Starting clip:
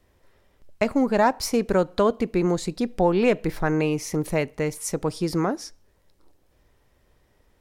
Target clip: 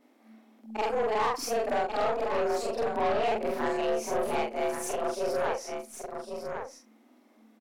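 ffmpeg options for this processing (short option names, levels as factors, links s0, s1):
-filter_complex "[0:a]afftfilt=real='re':imag='-im':win_size=4096:overlap=0.75,highshelf=f=11000:g=4,afreqshift=220,aeval=exprs='0.282*(cos(1*acos(clip(val(0)/0.282,-1,1)))-cos(1*PI/2))+0.141*(cos(2*acos(clip(val(0)/0.282,-1,1)))-cos(2*PI/2))+0.1*(cos(4*acos(clip(val(0)/0.282,-1,1)))-cos(4*PI/2))':c=same,asplit=2[s0][s1];[s1]aecho=0:1:1104:0.299[s2];[s0][s2]amix=inputs=2:normalize=0,asoftclip=type=tanh:threshold=0.0708,highshelf=f=4500:g=-6,asplit=2[s3][s4];[s4]acompressor=threshold=0.00891:ratio=6,volume=0.708[s5];[s3][s5]amix=inputs=2:normalize=0"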